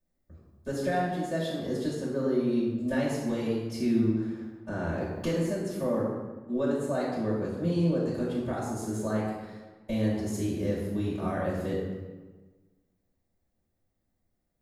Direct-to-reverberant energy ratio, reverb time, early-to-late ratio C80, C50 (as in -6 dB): -10.0 dB, 1.4 s, 3.0 dB, 1.0 dB